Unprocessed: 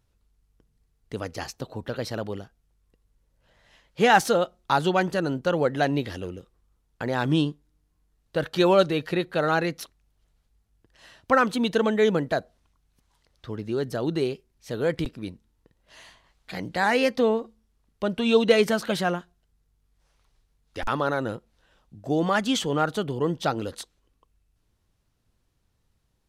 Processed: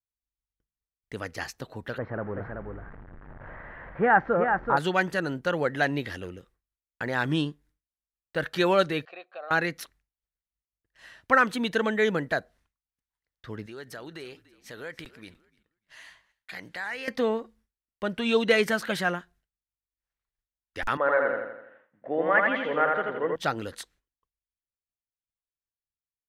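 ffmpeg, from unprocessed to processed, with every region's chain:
-filter_complex "[0:a]asettb=1/sr,asplit=3[a][b][c];[a]atrim=end=1.984[d];[b]atrim=start=1.98:end=4.77,asetpts=PTS-STARTPTS,afade=t=in:d=0.004:c=qsin,afade=t=out:st=2.786:d=0.004:c=qsin,aeval=exprs='val(0)+0.5*0.0224*sgn(val(0))':c=same,lowpass=f=1.5k:w=0.5412,lowpass=f=1.5k:w=1.3066,aecho=1:1:380:0.531,atrim=end_sample=123039[e];[c]atrim=start=4.766[f];[d][e]acrossfade=d=0.004:c1=hsin:c2=qsin[g];[g][f]acrossfade=d=0.004:c1=qsin:c2=hsin,asettb=1/sr,asplit=3[h][i][j];[h]atrim=end=9.054[k];[i]atrim=start=9.05:end=9.51,asetpts=PTS-STARTPTS,afade=t=in:d=0.004:c=qsin,afade=t=out:st=0.456:d=0.004:c=qsin,asplit=3[l][m][n];[l]bandpass=f=730:t=q:w=8,volume=0dB[o];[m]bandpass=f=1.09k:t=q:w=8,volume=-6dB[p];[n]bandpass=f=2.44k:t=q:w=8,volume=-9dB[q];[o][p][q]amix=inputs=3:normalize=0,acompressor=threshold=-35dB:ratio=2.5:attack=3.2:release=140:knee=1:detection=peak,highpass=320,equalizer=f=560:t=q:w=4:g=5,equalizer=f=1.9k:t=q:w=4:g=5,equalizer=f=4.1k:t=q:w=4:g=7,lowpass=f=8.2k:w=0.5412,lowpass=f=8.2k:w=1.3066[r];[j]atrim=start=9.506[s];[k][r]acrossfade=d=0.004:c1=hsin:c2=qsin[t];[t][s]acrossfade=d=0.004:c1=qsin:c2=hsin,asettb=1/sr,asplit=3[u][v][w];[u]atrim=end=13.664[x];[v]atrim=start=13.66:end=17.08,asetpts=PTS-STARTPTS,afade=t=in:d=0.004:c=qsin,afade=t=out:st=3.416:d=0.004:c=qsin,lowshelf=f=470:g=-10,acompressor=threshold=-36dB:ratio=2.5:attack=3.2:release=140:knee=1:detection=peak,asplit=5[y][z][aa][ab][ac];[z]adelay=292,afreqshift=-52,volume=-18.5dB[ad];[aa]adelay=584,afreqshift=-104,volume=-24.7dB[ae];[ab]adelay=876,afreqshift=-156,volume=-30.9dB[af];[ac]adelay=1168,afreqshift=-208,volume=-37.1dB[ag];[y][ad][ae][af][ag]amix=inputs=5:normalize=0,atrim=end_sample=150822[ah];[w]atrim=start=17.076[ai];[x][ah]acrossfade=d=0.004:c1=hsin:c2=qsin[aj];[aj][ai]acrossfade=d=0.004:c1=qsin:c2=hsin,asettb=1/sr,asplit=3[ak][al][am];[ak]atrim=end=20.974[an];[al]atrim=start=20.97:end=23.36,asetpts=PTS-STARTPTS,afade=t=in:d=0.004:c=qsin,afade=t=out:st=2.386:d=0.004:c=qsin,highpass=340,equalizer=f=370:t=q:w=4:g=-4,equalizer=f=530:t=q:w=4:g=9,equalizer=f=2k:t=q:w=4:g=6,lowpass=f=2.2k:w=0.5412,lowpass=f=2.2k:w=1.3066,aecho=1:1:83|166|249|332|415|498|581:0.708|0.361|0.184|0.0939|0.0479|0.0244|0.0125,atrim=end_sample=105399[ao];[am]atrim=start=23.356[ap];[an][ao]acrossfade=d=0.004:c1=hsin:c2=qsin[aq];[aq][ap]acrossfade=d=0.004:c1=qsin:c2=hsin,equalizer=f=1.8k:t=o:w=0.93:g=9.5,agate=range=-33dB:threshold=-50dB:ratio=3:detection=peak,highshelf=f=10k:g=5,volume=-4.5dB"

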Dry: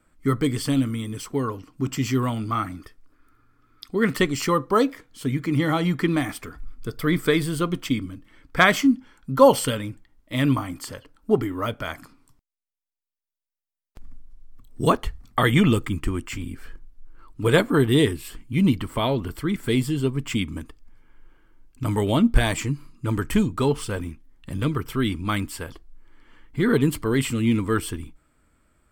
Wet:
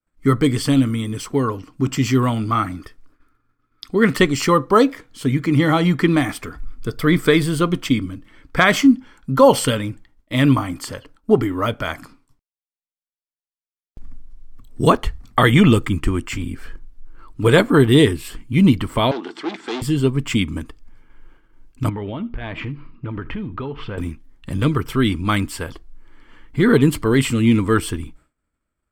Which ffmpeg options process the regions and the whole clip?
-filter_complex "[0:a]asettb=1/sr,asplit=3[a][b][c];[a]atrim=end=19.114[d];[b]atrim=start=19.11:end=19.82,asetpts=PTS-STARTPTS,afade=t=in:d=0.004:c=qsin,afade=t=out:st=0.706:d=0.004:c=qsin,aeval=exprs='val(0)+0.00891*(sin(2*PI*50*n/s)+sin(2*PI*2*50*n/s)/2+sin(2*PI*3*50*n/s)/3+sin(2*PI*4*50*n/s)/4+sin(2*PI*5*50*n/s)/5)':c=same,asoftclip=type=hard:threshold=-28dB,highpass=f=290:w=0.5412,highpass=f=290:w=1.3066,equalizer=f=340:t=q:w=4:g=6,equalizer=f=570:t=q:w=4:g=-10,equalizer=f=820:t=q:w=4:g=6,equalizer=f=3.6k:t=q:w=4:g=5,lowpass=f=6.4k:w=0.5412,lowpass=f=6.4k:w=1.3066[e];[c]atrim=start=19.816[f];[d][e]acrossfade=d=0.004:c1=hsin:c2=qsin[g];[g][f]acrossfade=d=0.004:c1=qsin:c2=hsin,asettb=1/sr,asplit=3[h][i][j];[h]atrim=end=21.894[k];[i]atrim=start=21.89:end=23.98,asetpts=PTS-STARTPTS,afade=t=in:d=0.004:c=qsin,afade=t=out:st=2.086:d=0.004:c=qsin,lowpass=f=3.1k:w=0.5412,lowpass=f=3.1k:w=1.3066,acompressor=threshold=-30dB:ratio=8:attack=3.2:release=140:knee=1:detection=peak,aecho=1:1:76|152:0.0944|0.016,atrim=end_sample=92169[l];[j]atrim=start=23.976[m];[k][l]acrossfade=d=0.004:c1=hsin:c2=qsin[n];[n][m]acrossfade=d=0.004:c1=qsin:c2=hsin,agate=range=-33dB:threshold=-49dB:ratio=3:detection=peak,highshelf=f=11k:g=-7,alimiter=level_in=7dB:limit=-1dB:release=50:level=0:latency=1,volume=-1dB"

